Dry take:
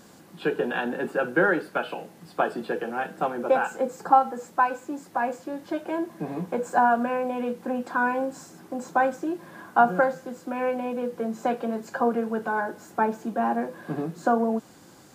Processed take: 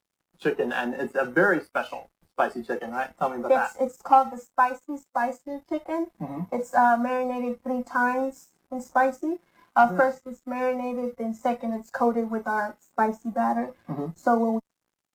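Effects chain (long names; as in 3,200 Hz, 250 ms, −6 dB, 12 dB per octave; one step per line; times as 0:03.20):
dead-zone distortion −45.5 dBFS
harmonic generator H 5 −28 dB, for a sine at −4 dBFS
noise reduction from a noise print of the clip's start 14 dB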